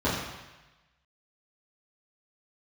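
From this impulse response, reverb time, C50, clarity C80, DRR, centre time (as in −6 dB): 1.1 s, 2.0 dB, 4.0 dB, −11.0 dB, 65 ms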